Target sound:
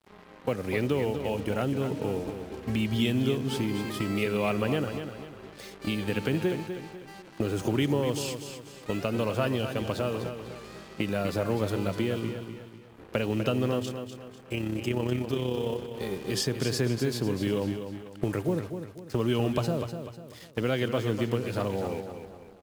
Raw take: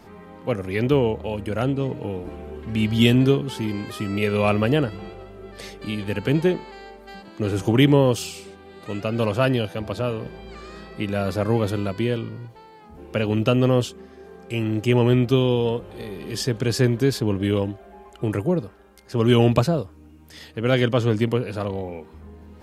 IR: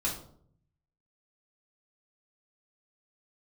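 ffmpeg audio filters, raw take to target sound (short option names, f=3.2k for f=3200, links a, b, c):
-filter_complex "[0:a]highpass=f=100:p=1,agate=range=-15dB:threshold=-33dB:ratio=16:detection=peak,acompressor=threshold=-38dB:ratio=3,acrusher=bits=8:mix=0:aa=0.5,asettb=1/sr,asplit=3[a][b][c];[a]atrim=end=13.794[d];[b]atrim=start=13.79:end=15.92,asetpts=PTS-STARTPTS,afade=t=in:d=0.004:c=qsin,afade=t=out:st=2.126:d=0.004:c=qsin,tremolo=f=33:d=0.519[e];[c]atrim=start=15.916[f];[d][e]acrossfade=d=0.004:c1=hsin:c2=qsin[g];[g][f]acrossfade=d=0.004:c1=qsin:c2=hsin,aecho=1:1:248|496|744|992:0.376|0.15|0.0601|0.0241,volume=8dB"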